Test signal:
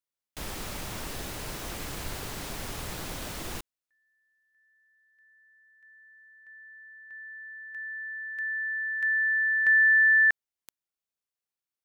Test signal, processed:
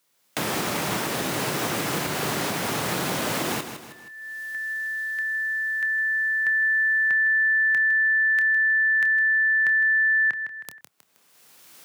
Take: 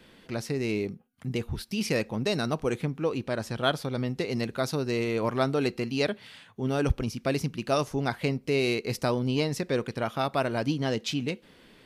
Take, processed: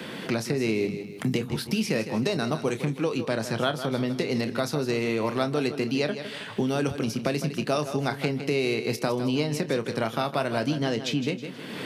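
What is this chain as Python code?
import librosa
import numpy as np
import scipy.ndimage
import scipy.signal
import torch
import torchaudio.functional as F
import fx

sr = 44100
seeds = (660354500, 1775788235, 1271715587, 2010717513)

p1 = fx.recorder_agc(x, sr, target_db=-17.5, rise_db_per_s=17.0, max_gain_db=27)
p2 = scipy.signal.sosfilt(scipy.signal.butter(4, 120.0, 'highpass', fs=sr, output='sos'), p1)
p3 = fx.doubler(p2, sr, ms=27.0, db=-11.5)
p4 = p3 + fx.echo_feedback(p3, sr, ms=158, feedback_pct=30, wet_db=-12.0, dry=0)
y = fx.band_squash(p4, sr, depth_pct=70)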